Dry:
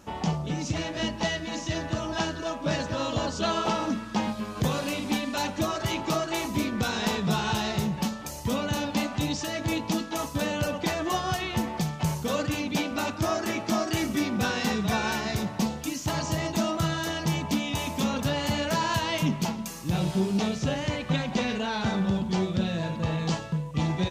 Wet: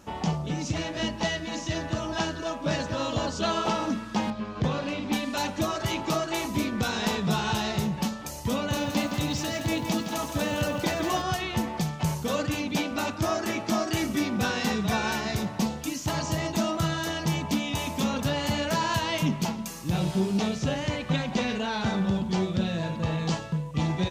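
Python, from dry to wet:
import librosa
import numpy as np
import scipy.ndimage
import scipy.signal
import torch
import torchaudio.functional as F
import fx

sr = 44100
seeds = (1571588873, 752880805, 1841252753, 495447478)

y = fx.air_absorb(x, sr, metres=150.0, at=(4.3, 5.13))
y = fx.echo_crushed(y, sr, ms=166, feedback_pct=35, bits=8, wet_db=-6.5, at=(8.54, 11.22))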